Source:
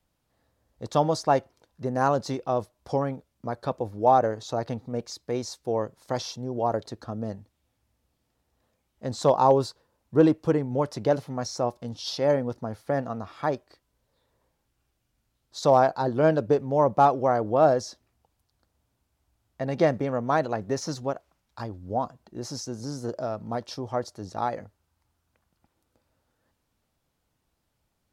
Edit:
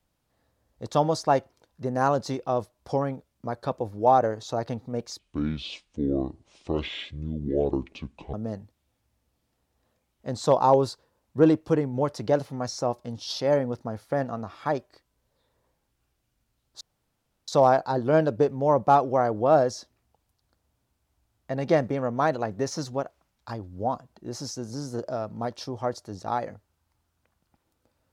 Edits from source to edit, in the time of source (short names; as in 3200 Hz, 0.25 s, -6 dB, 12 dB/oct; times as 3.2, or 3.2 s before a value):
5.19–7.11 speed 61%
15.58 insert room tone 0.67 s